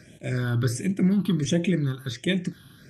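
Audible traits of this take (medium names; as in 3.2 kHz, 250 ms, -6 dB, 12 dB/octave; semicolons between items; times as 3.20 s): phasing stages 6, 1.4 Hz, lowest notch 560–1300 Hz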